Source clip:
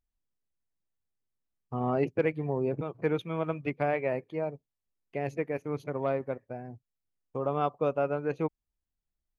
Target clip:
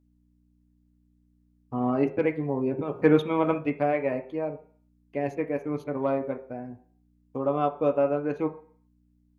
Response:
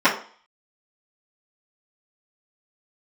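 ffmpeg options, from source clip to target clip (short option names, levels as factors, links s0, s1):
-filter_complex "[0:a]bandreject=f=177.1:t=h:w=4,bandreject=f=354.2:t=h:w=4,bandreject=f=531.3:t=h:w=4,bandreject=f=708.4:t=h:w=4,bandreject=f=885.5:t=h:w=4,bandreject=f=1062.6:t=h:w=4,bandreject=f=1239.7:t=h:w=4,bandreject=f=1416.8:t=h:w=4,bandreject=f=1593.9:t=h:w=4,bandreject=f=1771:t=h:w=4,bandreject=f=1948.1:t=h:w=4,bandreject=f=2125.2:t=h:w=4,bandreject=f=2302.3:t=h:w=4,bandreject=f=2479.4:t=h:w=4,bandreject=f=2656.5:t=h:w=4,bandreject=f=2833.6:t=h:w=4,bandreject=f=3010.7:t=h:w=4,bandreject=f=3187.8:t=h:w=4,bandreject=f=3364.9:t=h:w=4,bandreject=f=3542:t=h:w=4,bandreject=f=3719.1:t=h:w=4,bandreject=f=3896.2:t=h:w=4,bandreject=f=4073.3:t=h:w=4,bandreject=f=4250.4:t=h:w=4,asplit=3[s0][s1][s2];[s0]afade=t=out:st=2.87:d=0.02[s3];[s1]acontrast=63,afade=t=in:st=2.87:d=0.02,afade=t=out:st=3.57:d=0.02[s4];[s2]afade=t=in:st=3.57:d=0.02[s5];[s3][s4][s5]amix=inputs=3:normalize=0,aeval=exprs='val(0)+0.000631*(sin(2*PI*60*n/s)+sin(2*PI*2*60*n/s)/2+sin(2*PI*3*60*n/s)/3+sin(2*PI*4*60*n/s)/4+sin(2*PI*5*60*n/s)/5)':c=same,asplit=2[s6][s7];[1:a]atrim=start_sample=2205,lowpass=2800,lowshelf=f=420:g=6.5[s8];[s7][s8]afir=irnorm=-1:irlink=0,volume=0.0473[s9];[s6][s9]amix=inputs=2:normalize=0"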